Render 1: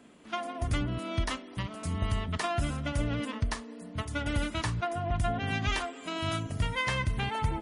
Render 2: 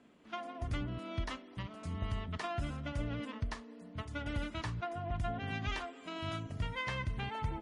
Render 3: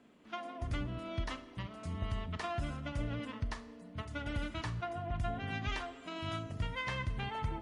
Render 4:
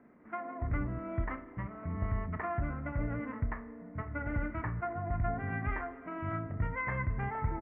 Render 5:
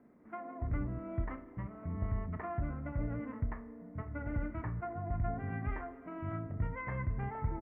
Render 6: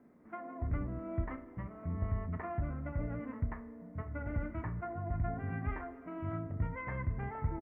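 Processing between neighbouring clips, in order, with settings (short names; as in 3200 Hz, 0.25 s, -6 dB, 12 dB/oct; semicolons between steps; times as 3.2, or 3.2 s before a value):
air absorption 75 m; gain -7 dB
Schroeder reverb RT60 0.78 s, combs from 26 ms, DRR 13.5 dB
Chebyshev low-pass 2100 Hz, order 5; doubler 30 ms -13 dB; gain +3.5 dB
bell 1800 Hz -6.5 dB 2 oct; gain -1.5 dB
doubler 12 ms -11.5 dB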